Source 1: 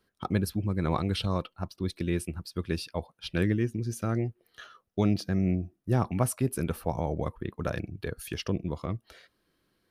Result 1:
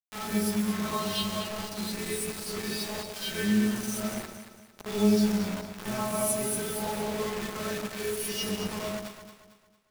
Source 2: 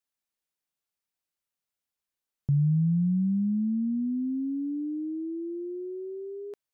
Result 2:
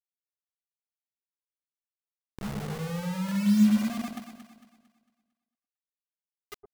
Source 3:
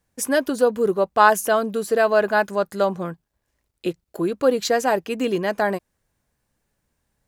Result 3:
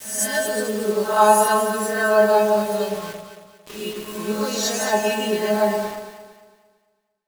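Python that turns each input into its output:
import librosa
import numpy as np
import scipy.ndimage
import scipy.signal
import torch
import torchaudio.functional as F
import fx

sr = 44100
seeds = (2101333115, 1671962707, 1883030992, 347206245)

p1 = fx.spec_swells(x, sr, rise_s=0.68)
p2 = fx.high_shelf(p1, sr, hz=2800.0, db=6.5)
p3 = fx.stiff_resonator(p2, sr, f0_hz=210.0, decay_s=0.34, stiffness=0.002)
p4 = fx.rev_plate(p3, sr, seeds[0], rt60_s=0.75, hf_ratio=0.5, predelay_ms=115, drr_db=10.0)
p5 = fx.rider(p4, sr, range_db=4, speed_s=2.0)
p6 = p4 + F.gain(torch.from_numpy(p5), 2.5).numpy()
p7 = fx.quant_dither(p6, sr, seeds[1], bits=6, dither='none')
y = fx.echo_alternate(p7, sr, ms=113, hz=870.0, feedback_pct=62, wet_db=-5.0)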